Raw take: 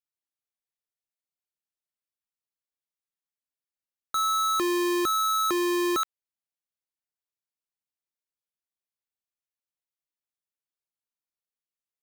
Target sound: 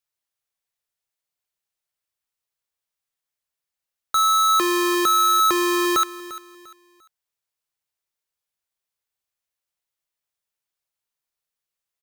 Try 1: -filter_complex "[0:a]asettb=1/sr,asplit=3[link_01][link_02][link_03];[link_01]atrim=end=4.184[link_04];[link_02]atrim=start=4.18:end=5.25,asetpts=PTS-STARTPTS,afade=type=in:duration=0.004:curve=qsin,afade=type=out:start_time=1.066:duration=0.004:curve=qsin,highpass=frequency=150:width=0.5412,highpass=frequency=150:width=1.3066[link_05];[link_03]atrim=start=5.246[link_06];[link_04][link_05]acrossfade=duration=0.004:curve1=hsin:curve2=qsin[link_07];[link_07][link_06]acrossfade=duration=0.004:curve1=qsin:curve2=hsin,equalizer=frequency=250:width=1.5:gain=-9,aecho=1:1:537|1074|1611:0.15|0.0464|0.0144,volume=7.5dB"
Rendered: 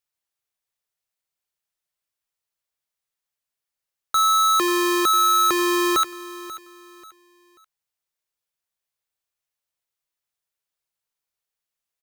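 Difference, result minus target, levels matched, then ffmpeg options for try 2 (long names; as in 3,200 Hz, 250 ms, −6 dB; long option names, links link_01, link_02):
echo 190 ms late
-filter_complex "[0:a]asettb=1/sr,asplit=3[link_01][link_02][link_03];[link_01]atrim=end=4.184[link_04];[link_02]atrim=start=4.18:end=5.25,asetpts=PTS-STARTPTS,afade=type=in:duration=0.004:curve=qsin,afade=type=out:start_time=1.066:duration=0.004:curve=qsin,highpass=frequency=150:width=0.5412,highpass=frequency=150:width=1.3066[link_05];[link_03]atrim=start=5.246[link_06];[link_04][link_05]acrossfade=duration=0.004:curve1=hsin:curve2=qsin[link_07];[link_07][link_06]acrossfade=duration=0.004:curve1=qsin:curve2=hsin,equalizer=frequency=250:width=1.5:gain=-9,aecho=1:1:347|694|1041:0.15|0.0464|0.0144,volume=7.5dB"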